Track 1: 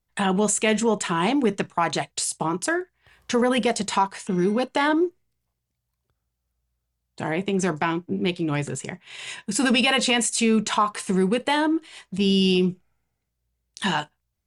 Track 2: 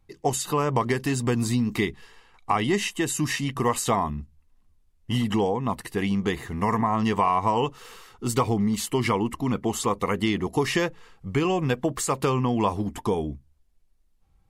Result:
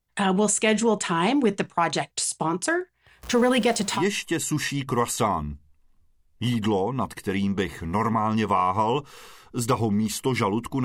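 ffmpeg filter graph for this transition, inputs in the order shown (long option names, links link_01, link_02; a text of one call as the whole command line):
ffmpeg -i cue0.wav -i cue1.wav -filter_complex "[0:a]asettb=1/sr,asplit=3[link_01][link_02][link_03];[link_01]atrim=end=3.234[link_04];[link_02]atrim=start=3.23:end=4.04,asetpts=PTS-STARTPTS,afade=type=in:duration=0.004:curve=qsin,afade=type=out:start_time=0.806:duration=0.004:curve=qsin,aeval=exprs='val(0)+0.5*0.0188*sgn(val(0))':channel_layout=same[link_05];[link_03]atrim=start=4.036[link_06];[link_04][link_05]acrossfade=duration=0.004:curve1=hsin:curve2=qsin[link_07];[link_07][link_06]acrossfade=duration=0.004:curve1=qsin:curve2=hsin,apad=whole_dur=10.84,atrim=end=10.84,atrim=end=4.04,asetpts=PTS-STARTPTS[link_08];[1:a]atrim=start=2.6:end=9.52,asetpts=PTS-STARTPTS[link_09];[link_08][link_09]acrossfade=duration=0.12:curve1=tri:curve2=tri" out.wav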